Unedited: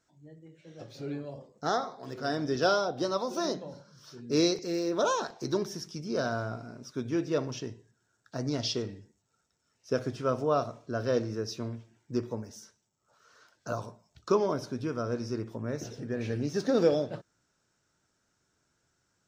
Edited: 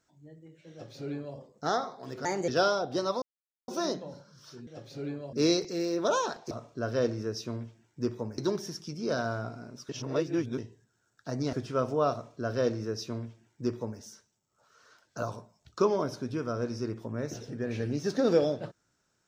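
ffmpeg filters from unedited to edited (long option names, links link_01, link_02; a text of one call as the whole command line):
ffmpeg -i in.wav -filter_complex "[0:a]asplit=11[link_01][link_02][link_03][link_04][link_05][link_06][link_07][link_08][link_09][link_10][link_11];[link_01]atrim=end=2.254[link_12];[link_02]atrim=start=2.25:end=2.54,asetpts=PTS-STARTPTS,asetrate=55566,aresample=44100[link_13];[link_03]atrim=start=2.536:end=3.28,asetpts=PTS-STARTPTS,afade=type=out:start_time=0.74:duration=0.004:curve=hsin,apad=pad_dur=0.46[link_14];[link_04]atrim=start=3.28:end=4.272,asetpts=PTS-STARTPTS,afade=type=in:duration=0.004:curve=hsin[link_15];[link_05]atrim=start=0.708:end=1.372[link_16];[link_06]atrim=start=4.268:end=5.452[link_17];[link_07]atrim=start=10.628:end=12.502[link_18];[link_08]atrim=start=5.448:end=6.962[link_19];[link_09]atrim=start=6.958:end=7.652,asetpts=PTS-STARTPTS,areverse[link_20];[link_10]atrim=start=7.648:end=8.602[link_21];[link_11]atrim=start=10.028[link_22];[link_12][link_13]acrossfade=duration=0.004:curve1=hsin:curve2=hsin[link_23];[link_14][link_15]concat=n=2:v=0:a=1[link_24];[link_23][link_24]acrossfade=duration=0.004:curve1=hsin:curve2=hsin[link_25];[link_25][link_16]acrossfade=duration=0.004:curve1=hsin:curve2=hsin[link_26];[link_26][link_17]acrossfade=duration=0.004:curve1=hsin:curve2=hsin[link_27];[link_27][link_18]acrossfade=duration=0.004:curve1=hsin:curve2=hsin[link_28];[link_28][link_19]acrossfade=duration=0.004:curve1=hsin:curve2=hsin[link_29];[link_29][link_20]acrossfade=duration=0.004:curve1=hsin:curve2=hsin[link_30];[link_30][link_21]acrossfade=duration=0.004:curve1=hsin:curve2=hsin[link_31];[link_31][link_22]acrossfade=duration=0.004:curve1=hsin:curve2=hsin" out.wav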